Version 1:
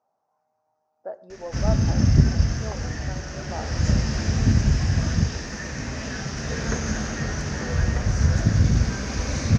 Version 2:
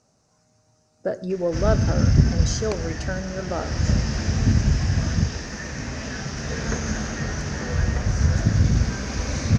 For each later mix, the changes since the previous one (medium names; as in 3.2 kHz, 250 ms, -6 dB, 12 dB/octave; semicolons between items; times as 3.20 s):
speech: remove band-pass filter 830 Hz, Q 3.5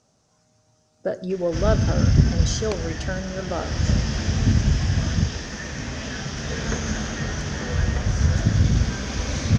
master: add peaking EQ 3.3 kHz +9 dB 0.31 oct